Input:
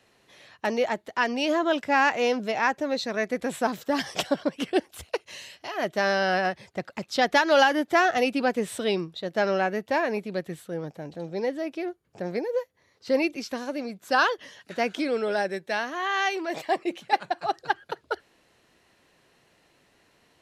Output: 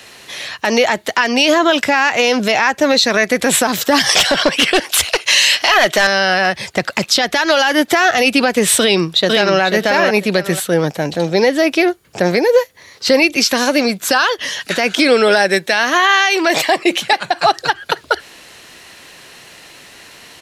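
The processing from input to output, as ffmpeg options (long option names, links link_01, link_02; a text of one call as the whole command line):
ffmpeg -i in.wav -filter_complex "[0:a]asettb=1/sr,asplit=3[link_01][link_02][link_03];[link_01]atrim=end=4.094[link_04];[link_02]atrim=start=4.09:end=6.07,asetpts=PTS-STARTPTS,afade=type=in:duration=0.004:curve=qsin,afade=type=out:start_time=1.976:duration=0.004:curve=qsin,asplit=2[link_05][link_06];[link_06]highpass=frequency=720:poles=1,volume=18dB,asoftclip=type=tanh:threshold=-10dB[link_07];[link_05][link_07]amix=inputs=2:normalize=0,lowpass=frequency=5700:poles=1,volume=-6dB[link_08];[link_03]atrim=start=6.066[link_09];[link_04][link_08]acrossfade=duration=0.004:curve1=hsin:curve2=qsin[link_10];[link_10][link_09]acrossfade=duration=0.004:curve1=qsin:curve2=hsin,asplit=2[link_11][link_12];[link_12]afade=type=in:start_time=8.8:duration=0.01,afade=type=out:start_time=9.61:duration=0.01,aecho=0:1:490|980:0.794328|0.0794328[link_13];[link_11][link_13]amix=inputs=2:normalize=0,tiltshelf=frequency=1300:gain=-5.5,acrossover=split=120[link_14][link_15];[link_15]acompressor=threshold=-29dB:ratio=4[link_16];[link_14][link_16]amix=inputs=2:normalize=0,alimiter=level_in=23.5dB:limit=-1dB:release=50:level=0:latency=1,volume=-1dB" out.wav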